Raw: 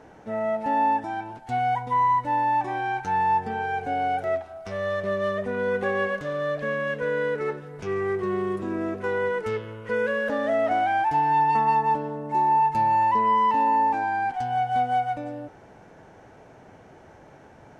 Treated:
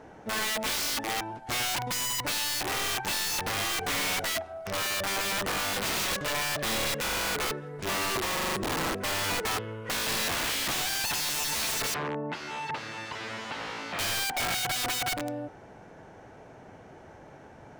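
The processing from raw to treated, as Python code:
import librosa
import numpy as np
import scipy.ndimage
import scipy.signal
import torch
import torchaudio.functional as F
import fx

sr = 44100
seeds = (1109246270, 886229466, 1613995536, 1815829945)

y = (np.mod(10.0 ** (25.0 / 20.0) * x + 1.0, 2.0) - 1.0) / 10.0 ** (25.0 / 20.0)
y = fx.bandpass_edges(y, sr, low_hz=110.0, high_hz=2200.0, at=(11.94, 13.99))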